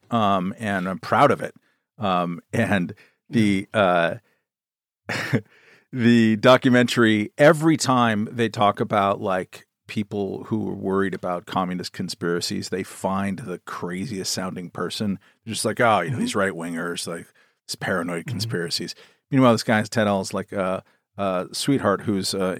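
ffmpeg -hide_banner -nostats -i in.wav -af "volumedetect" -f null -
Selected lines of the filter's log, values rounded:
mean_volume: -22.6 dB
max_volume: -4.2 dB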